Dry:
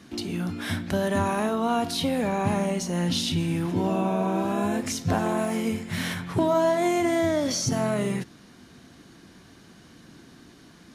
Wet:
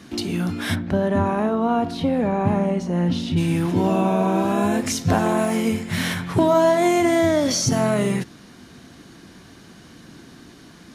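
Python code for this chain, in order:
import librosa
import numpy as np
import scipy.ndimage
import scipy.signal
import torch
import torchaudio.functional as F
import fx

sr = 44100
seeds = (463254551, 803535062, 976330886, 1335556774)

y = fx.lowpass(x, sr, hz=1000.0, slope=6, at=(0.74, 3.36), fade=0.02)
y = y * librosa.db_to_amplitude(5.5)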